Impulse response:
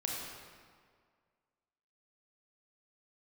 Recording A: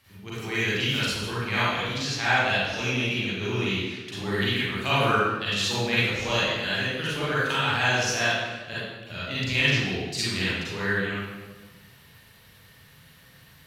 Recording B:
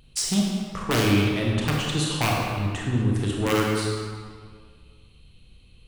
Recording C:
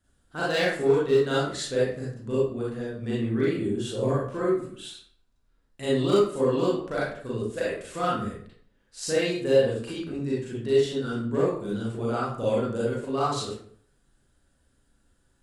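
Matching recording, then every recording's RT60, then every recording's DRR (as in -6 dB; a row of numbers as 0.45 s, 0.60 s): B; 1.3 s, 1.9 s, 0.55 s; -10.5 dB, -2.5 dB, -8.0 dB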